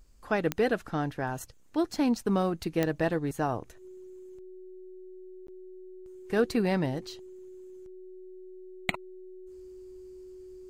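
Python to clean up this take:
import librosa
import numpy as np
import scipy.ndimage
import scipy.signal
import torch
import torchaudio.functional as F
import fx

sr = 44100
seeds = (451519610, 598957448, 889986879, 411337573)

y = fx.fix_declick_ar(x, sr, threshold=10.0)
y = fx.notch(y, sr, hz=370.0, q=30.0)
y = fx.fix_interpolate(y, sr, at_s=(5.47,), length_ms=13.0)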